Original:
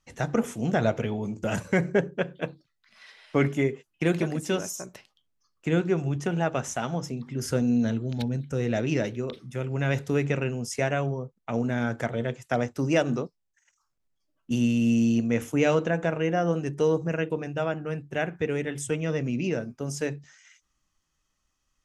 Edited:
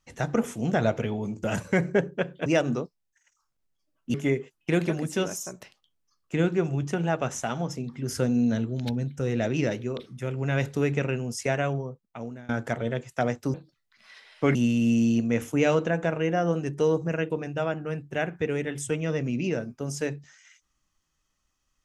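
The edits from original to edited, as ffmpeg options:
ffmpeg -i in.wav -filter_complex "[0:a]asplit=6[link_01][link_02][link_03][link_04][link_05][link_06];[link_01]atrim=end=2.462[link_07];[link_02]atrim=start=12.868:end=14.552[link_08];[link_03]atrim=start=3.468:end=11.82,asetpts=PTS-STARTPTS,afade=type=out:start_time=7.542:duration=0.81:silence=0.0668344[link_09];[link_04]atrim=start=11.82:end=12.872,asetpts=PTS-STARTPTS,afade=type=in:duration=0.004:curve=hsin:silence=0.0668344[link_10];[link_05]atrim=start=2.458:end=3.472[link_11];[link_06]atrim=start=14.548[link_12];[link_07][link_08]acrossfade=duration=0.004:curve1=hsin:curve2=hsin[link_13];[link_09][link_10]concat=n=2:v=0:a=1[link_14];[link_13][link_14]acrossfade=duration=0.004:curve1=hsin:curve2=hsin[link_15];[link_15][link_11]acrossfade=duration=0.004:curve1=hsin:curve2=hsin[link_16];[link_16][link_12]acrossfade=duration=0.004:curve1=hsin:curve2=hsin" out.wav

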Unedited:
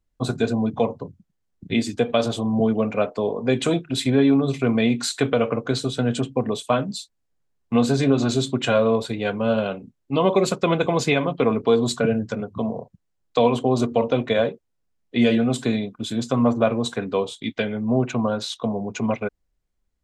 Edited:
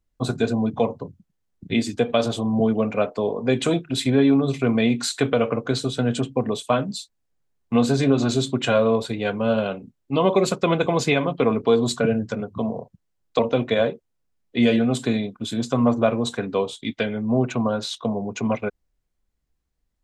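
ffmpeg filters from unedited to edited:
ffmpeg -i in.wav -filter_complex "[0:a]asplit=2[link_01][link_02];[link_01]atrim=end=13.392[link_03];[link_02]atrim=start=13.978[link_04];[link_03][link_04]acrossfade=duration=0.004:curve1=hsin:curve2=hsin" out.wav

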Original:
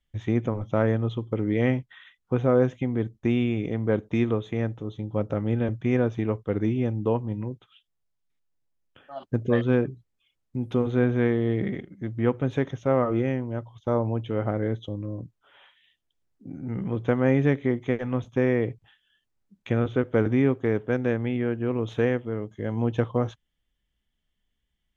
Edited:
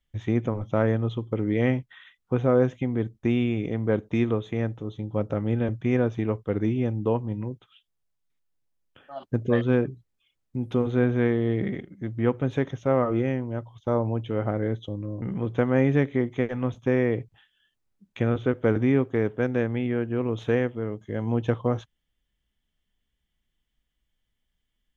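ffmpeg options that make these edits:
ffmpeg -i in.wav -filter_complex "[0:a]asplit=2[link_01][link_02];[link_01]atrim=end=15.222[link_03];[link_02]atrim=start=16.718[link_04];[link_03][link_04]acrossfade=duration=0.004:curve1=hsin:curve2=hsin" out.wav

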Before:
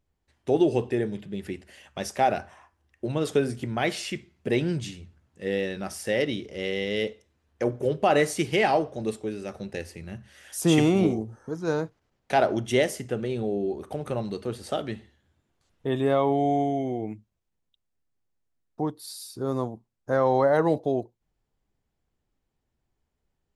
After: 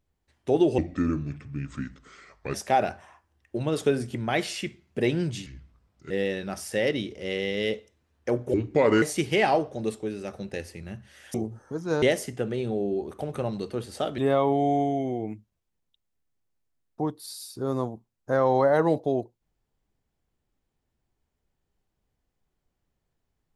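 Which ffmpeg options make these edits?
ffmpeg -i in.wav -filter_complex "[0:a]asplit=10[link_01][link_02][link_03][link_04][link_05][link_06][link_07][link_08][link_09][link_10];[link_01]atrim=end=0.784[link_11];[link_02]atrim=start=0.78:end=2.03,asetpts=PTS-STARTPTS,asetrate=31311,aresample=44100[link_12];[link_03]atrim=start=2.026:end=4.954[link_13];[link_04]atrim=start=4.95:end=5.44,asetpts=PTS-STARTPTS,asetrate=33516,aresample=44100[link_14];[link_05]atrim=start=5.436:end=7.874[link_15];[link_06]atrim=start=7.87:end=8.23,asetpts=PTS-STARTPTS,asetrate=32634,aresample=44100,atrim=end_sample=21454,asetpts=PTS-STARTPTS[link_16];[link_07]atrim=start=8.226:end=10.552[link_17];[link_08]atrim=start=11.108:end=11.792[link_18];[link_09]atrim=start=12.738:end=14.902[link_19];[link_10]atrim=start=15.978[link_20];[link_11][link_12]acrossfade=duration=0.004:curve1=hsin:curve2=hsin[link_21];[link_21][link_13]acrossfade=duration=0.004:curve1=hsin:curve2=hsin[link_22];[link_22][link_14]acrossfade=duration=0.004:curve1=hsin:curve2=hsin[link_23];[link_23][link_15]acrossfade=duration=0.004:curve1=hsin:curve2=hsin[link_24];[link_24][link_16]acrossfade=duration=0.004:curve1=hsin:curve2=hsin[link_25];[link_25][link_17]acrossfade=duration=0.004:curve1=hsin:curve2=hsin[link_26];[link_26][link_18]acrossfade=duration=0.004:curve1=hsin:curve2=hsin[link_27];[link_27][link_19]acrossfade=duration=0.004:curve1=hsin:curve2=hsin[link_28];[link_28][link_20]acrossfade=duration=0.004:curve1=hsin:curve2=hsin" out.wav

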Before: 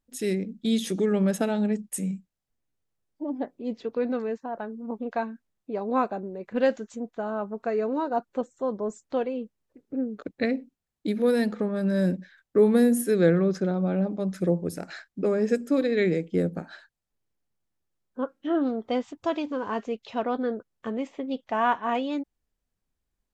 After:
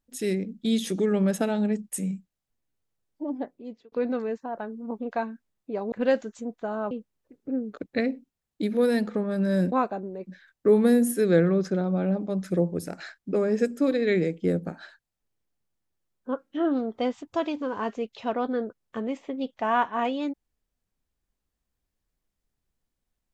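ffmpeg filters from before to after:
ffmpeg -i in.wav -filter_complex "[0:a]asplit=6[link_01][link_02][link_03][link_04][link_05][link_06];[link_01]atrim=end=3.92,asetpts=PTS-STARTPTS,afade=type=out:start_time=3.32:duration=0.6[link_07];[link_02]atrim=start=3.92:end=5.922,asetpts=PTS-STARTPTS,afade=type=in:duration=0.004:curve=hsin[link_08];[link_03]atrim=start=6.468:end=7.462[link_09];[link_04]atrim=start=9.358:end=12.172[link_10];[link_05]atrim=start=5.918:end=6.472[link_11];[link_06]atrim=start=12.168[link_12];[link_07][link_08]concat=n=2:v=0:a=1[link_13];[link_13][link_09]acrossfade=duration=0.004:curve1=hsin:curve2=hsin[link_14];[link_14][link_10]acrossfade=duration=0.004:curve1=hsin:curve2=hsin[link_15];[link_15][link_11]acrossfade=duration=0.004:curve1=hsin:curve2=hsin[link_16];[link_16][link_12]acrossfade=duration=0.004:curve1=hsin:curve2=hsin" out.wav

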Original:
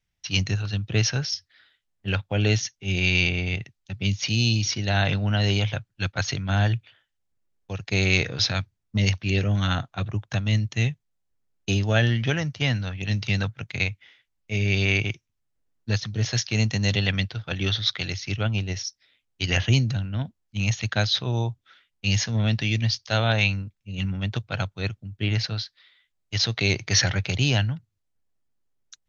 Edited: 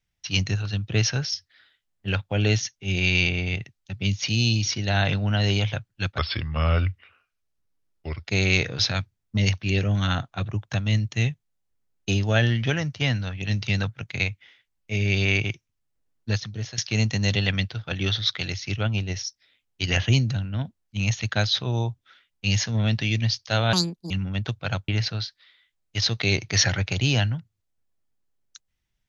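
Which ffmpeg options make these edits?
ffmpeg -i in.wav -filter_complex "[0:a]asplit=7[link_01][link_02][link_03][link_04][link_05][link_06][link_07];[link_01]atrim=end=6.184[link_08];[link_02]atrim=start=6.18:end=7.88,asetpts=PTS-STARTPTS,asetrate=35721,aresample=44100[link_09];[link_03]atrim=start=7.876:end=16.38,asetpts=PTS-STARTPTS,afade=type=out:start_time=8.024:duration=0.48:silence=0.199526[link_10];[link_04]atrim=start=16.38:end=23.334,asetpts=PTS-STARTPTS,afade=type=in:duration=0.004:curve=hsin:silence=0.199526[link_11];[link_05]atrim=start=23.33:end=23.98,asetpts=PTS-STARTPTS,asetrate=76293,aresample=44100,atrim=end_sample=16569,asetpts=PTS-STARTPTS[link_12];[link_06]atrim=start=23.976:end=24.762[link_13];[link_07]atrim=start=25.258[link_14];[link_08][link_09]acrossfade=duration=0.004:curve1=hsin:curve2=hsin[link_15];[link_10][link_11]concat=n=2:v=0:a=1[link_16];[link_15][link_16]acrossfade=duration=0.004:curve1=hsin:curve2=hsin[link_17];[link_17][link_12]acrossfade=duration=0.004:curve1=hsin:curve2=hsin[link_18];[link_18][link_13]acrossfade=duration=0.004:curve1=hsin:curve2=hsin[link_19];[link_19][link_14]acrossfade=duration=0.004:curve1=hsin:curve2=hsin" out.wav

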